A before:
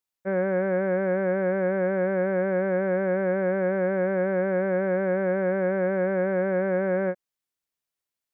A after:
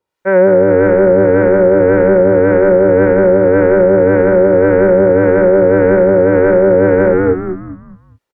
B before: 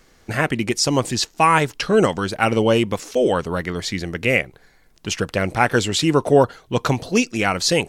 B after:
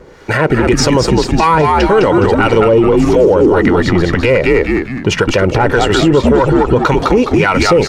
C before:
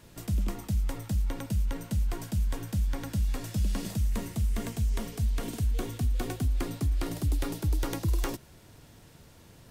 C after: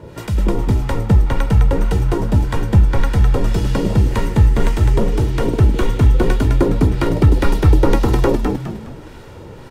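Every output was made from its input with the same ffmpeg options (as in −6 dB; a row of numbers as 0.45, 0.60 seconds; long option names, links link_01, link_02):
-filter_complex "[0:a]aeval=exprs='0.891*(cos(1*acos(clip(val(0)/0.891,-1,1)))-cos(1*PI/2))+0.141*(cos(5*acos(clip(val(0)/0.891,-1,1)))-cos(5*PI/2))+0.0251*(cos(8*acos(clip(val(0)/0.891,-1,1)))-cos(8*PI/2))':channel_layout=same,highpass=frequency=140:poles=1,acrossover=split=860[link_01][link_02];[link_01]aeval=exprs='val(0)*(1-0.7/2+0.7/2*cos(2*PI*1.8*n/s))':channel_layout=same[link_03];[link_02]aeval=exprs='val(0)*(1-0.7/2-0.7/2*cos(2*PI*1.8*n/s))':channel_layout=same[link_04];[link_03][link_04]amix=inputs=2:normalize=0,lowpass=frequency=1100:poles=1,aecho=1:1:2.1:0.48,asplit=6[link_05][link_06][link_07][link_08][link_09][link_10];[link_06]adelay=207,afreqshift=-88,volume=-4dB[link_11];[link_07]adelay=414,afreqshift=-176,volume=-12.2dB[link_12];[link_08]adelay=621,afreqshift=-264,volume=-20.4dB[link_13];[link_09]adelay=828,afreqshift=-352,volume=-28.5dB[link_14];[link_10]adelay=1035,afreqshift=-440,volume=-36.7dB[link_15];[link_05][link_11][link_12][link_13][link_14][link_15]amix=inputs=6:normalize=0,acompressor=threshold=-21dB:ratio=2.5,alimiter=level_in=18.5dB:limit=-1dB:release=50:level=0:latency=1,volume=-1dB"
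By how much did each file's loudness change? +15.5, +8.5, +15.0 LU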